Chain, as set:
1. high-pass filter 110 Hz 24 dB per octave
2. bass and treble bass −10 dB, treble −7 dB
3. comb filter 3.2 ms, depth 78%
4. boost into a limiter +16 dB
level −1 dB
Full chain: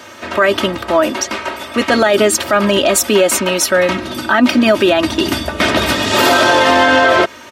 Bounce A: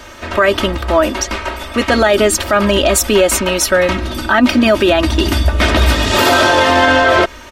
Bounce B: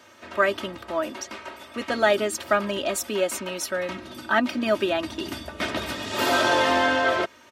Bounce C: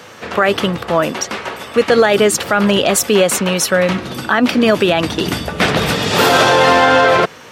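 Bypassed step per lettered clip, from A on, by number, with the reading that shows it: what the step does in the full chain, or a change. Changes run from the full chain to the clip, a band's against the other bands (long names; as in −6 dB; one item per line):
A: 1, 125 Hz band +7.5 dB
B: 4, change in crest factor +8.0 dB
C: 3, 125 Hz band +5.5 dB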